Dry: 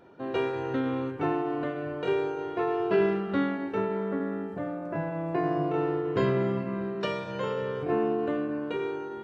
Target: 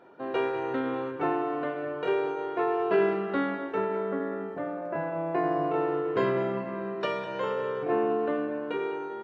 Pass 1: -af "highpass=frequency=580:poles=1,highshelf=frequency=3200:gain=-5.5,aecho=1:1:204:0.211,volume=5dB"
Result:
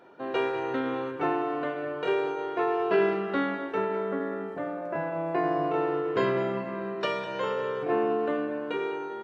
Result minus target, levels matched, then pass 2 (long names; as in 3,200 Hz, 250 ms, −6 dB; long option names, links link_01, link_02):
4,000 Hz band +3.5 dB
-af "highpass=frequency=580:poles=1,highshelf=frequency=3200:gain=-13,aecho=1:1:204:0.211,volume=5dB"